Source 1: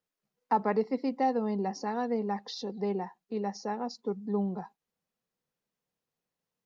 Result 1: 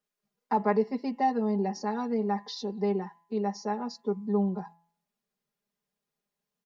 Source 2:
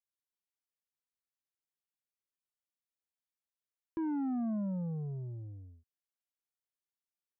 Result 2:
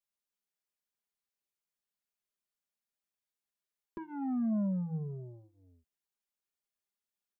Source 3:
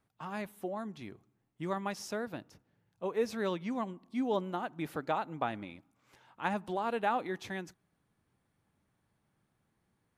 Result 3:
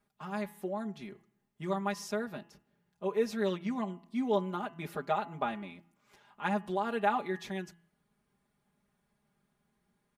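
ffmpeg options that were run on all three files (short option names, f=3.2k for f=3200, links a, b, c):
-af "aecho=1:1:4.9:0.94,bandreject=f=168.4:t=h:w=4,bandreject=f=336.8:t=h:w=4,bandreject=f=505.2:t=h:w=4,bandreject=f=673.6:t=h:w=4,bandreject=f=842:t=h:w=4,bandreject=f=1.0104k:t=h:w=4,bandreject=f=1.1788k:t=h:w=4,bandreject=f=1.3472k:t=h:w=4,bandreject=f=1.5156k:t=h:w=4,bandreject=f=1.684k:t=h:w=4,bandreject=f=1.8524k:t=h:w=4,bandreject=f=2.0208k:t=h:w=4,bandreject=f=2.1892k:t=h:w=4,bandreject=f=2.3576k:t=h:w=4,bandreject=f=2.526k:t=h:w=4,bandreject=f=2.6944k:t=h:w=4,bandreject=f=2.8628k:t=h:w=4,bandreject=f=3.0312k:t=h:w=4,bandreject=f=3.1996k:t=h:w=4,volume=-2dB"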